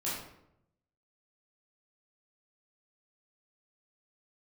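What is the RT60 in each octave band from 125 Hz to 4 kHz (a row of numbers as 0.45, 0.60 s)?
1.1, 0.95, 0.85, 0.75, 0.60, 0.50 s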